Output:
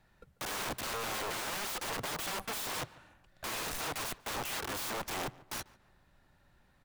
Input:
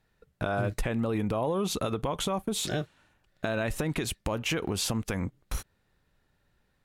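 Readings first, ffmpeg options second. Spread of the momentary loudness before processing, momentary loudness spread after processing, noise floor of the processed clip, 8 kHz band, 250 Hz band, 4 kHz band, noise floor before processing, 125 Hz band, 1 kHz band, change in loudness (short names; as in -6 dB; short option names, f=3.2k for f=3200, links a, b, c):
7 LU, 7 LU, -68 dBFS, -2.0 dB, -15.0 dB, -3.0 dB, -72 dBFS, -16.5 dB, -2.5 dB, -5.5 dB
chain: -filter_complex "[0:a]asplit=2[a][b];[b]acrusher=samples=24:mix=1:aa=0.000001,volume=-12dB[c];[a][c]amix=inputs=2:normalize=0,equalizer=f=450:w=5.3:g=-9,acrossover=split=590|7500[d][e][f];[d]alimiter=level_in=5dB:limit=-24dB:level=0:latency=1:release=37,volume=-5dB[g];[e]asoftclip=type=hard:threshold=-32.5dB[h];[f]acompressor=threshold=-56dB:ratio=6[i];[g][h][i]amix=inputs=3:normalize=0,aeval=exprs='(mod(63.1*val(0)+1,2)-1)/63.1':c=same,equalizer=f=930:w=0.72:g=5,asplit=2[j][k];[k]adelay=143,lowpass=f=2.4k:p=1,volume=-20dB,asplit=2[l][m];[m]adelay=143,lowpass=f=2.4k:p=1,volume=0.39,asplit=2[n][o];[o]adelay=143,lowpass=f=2.4k:p=1,volume=0.39[p];[j][l][n][p]amix=inputs=4:normalize=0,volume=2dB"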